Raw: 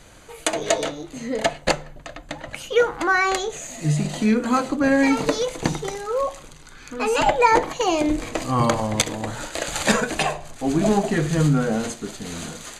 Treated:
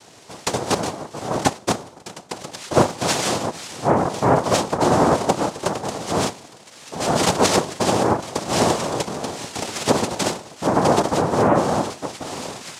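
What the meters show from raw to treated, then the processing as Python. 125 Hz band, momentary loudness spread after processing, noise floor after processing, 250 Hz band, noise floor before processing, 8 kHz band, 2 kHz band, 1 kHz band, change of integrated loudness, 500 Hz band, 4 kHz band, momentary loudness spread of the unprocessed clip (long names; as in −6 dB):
−0.5 dB, 13 LU, −45 dBFS, −0.5 dB, −44 dBFS, +3.0 dB, −4.0 dB, +2.5 dB, +1.0 dB, +2.0 dB, +2.5 dB, 14 LU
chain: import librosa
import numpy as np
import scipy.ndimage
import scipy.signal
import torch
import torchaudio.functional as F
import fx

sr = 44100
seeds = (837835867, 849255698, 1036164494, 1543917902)

y = fx.env_lowpass_down(x, sr, base_hz=810.0, full_db=-13.5)
y = fx.dynamic_eq(y, sr, hz=1800.0, q=0.73, threshold_db=-37.0, ratio=4.0, max_db=-4)
y = fx.noise_vocoder(y, sr, seeds[0], bands=2)
y = F.gain(torch.from_numpy(y), 2.5).numpy()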